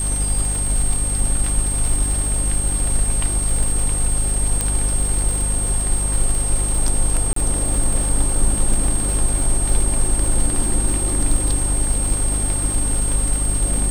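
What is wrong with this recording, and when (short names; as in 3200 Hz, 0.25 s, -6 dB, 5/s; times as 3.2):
crackle 150/s -23 dBFS
hum 50 Hz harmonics 6 -23 dBFS
tone 8500 Hz -22 dBFS
4.61 pop -5 dBFS
7.33–7.36 gap 33 ms
8.88 gap 3 ms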